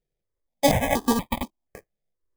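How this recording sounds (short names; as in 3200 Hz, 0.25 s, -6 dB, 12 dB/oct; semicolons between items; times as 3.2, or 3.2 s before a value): tremolo saw up 1.4 Hz, depth 30%; aliases and images of a low sample rate 1400 Hz, jitter 0%; notches that jump at a steady rate 4.2 Hz 280–1600 Hz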